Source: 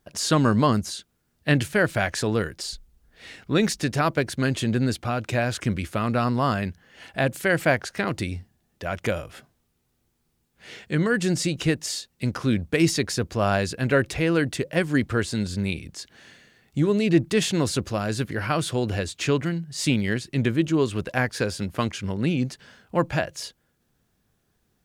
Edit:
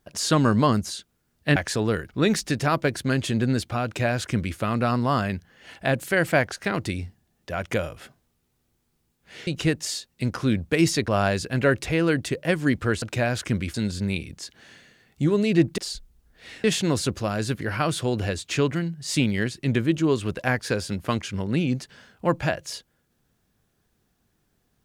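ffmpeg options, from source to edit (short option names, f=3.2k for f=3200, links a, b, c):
-filter_complex "[0:a]asplit=9[a][b][c][d][e][f][g][h][i];[a]atrim=end=1.562[j];[b]atrim=start=2.028:end=2.562[k];[c]atrim=start=3.418:end=10.802[l];[d]atrim=start=11.478:end=13.092[m];[e]atrim=start=13.358:end=15.302[n];[f]atrim=start=5.178:end=5.902[o];[g]atrim=start=15.298:end=17.342[p];[h]atrim=start=2.558:end=3.422[q];[i]atrim=start=17.338[r];[j][k]acrossfade=d=0.004:c1=hsin:c2=hsin[s];[s][l]acrossfade=d=0.004:c1=hsin:c2=hsin[t];[t][m]acrossfade=d=0.004:c1=hsin:c2=hsin[u];[u][n]acrossfade=d=0.004:c1=hsin:c2=hsin[v];[v][o]acrossfade=d=0.004:c1=hsin:c2=hsin[w];[w][p]acrossfade=d=0.004:c1=hsin:c2=hsin[x];[x][q]acrossfade=d=0.004:c1=hsin:c2=hsin[y];[y][r]acrossfade=d=0.004:c1=hsin:c2=hsin"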